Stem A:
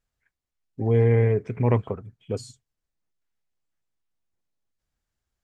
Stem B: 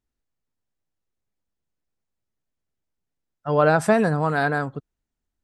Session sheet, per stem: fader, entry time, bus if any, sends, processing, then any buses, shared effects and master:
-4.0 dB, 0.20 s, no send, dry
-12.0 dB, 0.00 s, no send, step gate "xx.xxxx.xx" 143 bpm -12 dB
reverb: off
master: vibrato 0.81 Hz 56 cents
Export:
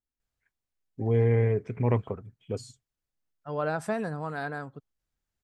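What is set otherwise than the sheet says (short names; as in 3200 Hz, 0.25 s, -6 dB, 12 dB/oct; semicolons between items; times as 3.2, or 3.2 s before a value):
stem B: missing step gate "xx.xxxx.xx" 143 bpm -12 dB; master: missing vibrato 0.81 Hz 56 cents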